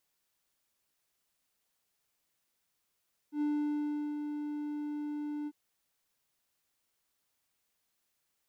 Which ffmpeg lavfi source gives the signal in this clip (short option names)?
-f lavfi -i "aevalsrc='0.0501*(1-4*abs(mod(296*t+0.25,1)-0.5))':d=2.196:s=44100,afade=t=in:d=0.092,afade=t=out:st=0.092:d=0.745:silence=0.473,afade=t=out:st=2.15:d=0.046"